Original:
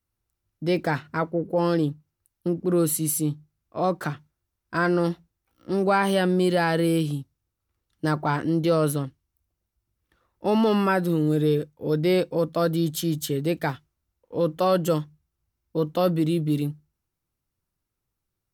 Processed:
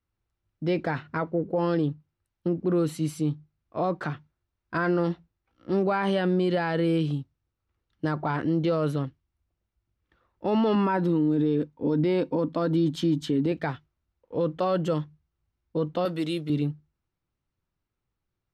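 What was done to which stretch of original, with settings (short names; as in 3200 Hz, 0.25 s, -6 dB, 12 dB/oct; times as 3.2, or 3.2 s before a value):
10.75–13.52 small resonant body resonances 270/930 Hz, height 12 dB
16.05–16.5 RIAA curve recording
whole clip: LPF 3700 Hz 12 dB/oct; limiter -16.5 dBFS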